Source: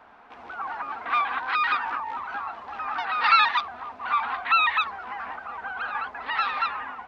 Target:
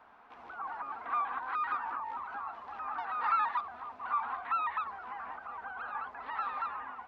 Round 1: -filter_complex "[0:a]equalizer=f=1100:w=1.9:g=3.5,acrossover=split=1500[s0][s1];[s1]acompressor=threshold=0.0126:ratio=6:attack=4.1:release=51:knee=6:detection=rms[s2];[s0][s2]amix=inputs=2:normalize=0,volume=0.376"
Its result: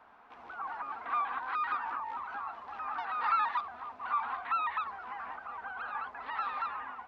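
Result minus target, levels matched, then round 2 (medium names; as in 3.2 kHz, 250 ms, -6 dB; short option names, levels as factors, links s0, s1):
compression: peak gain reduction -5.5 dB
-filter_complex "[0:a]equalizer=f=1100:w=1.9:g=3.5,acrossover=split=1500[s0][s1];[s1]acompressor=threshold=0.00596:ratio=6:attack=4.1:release=51:knee=6:detection=rms[s2];[s0][s2]amix=inputs=2:normalize=0,volume=0.376"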